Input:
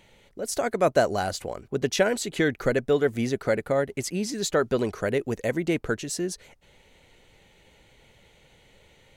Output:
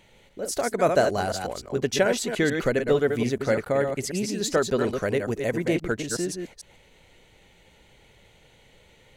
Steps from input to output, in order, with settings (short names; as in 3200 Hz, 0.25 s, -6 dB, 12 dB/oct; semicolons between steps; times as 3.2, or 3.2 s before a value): reverse delay 0.147 s, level -5.5 dB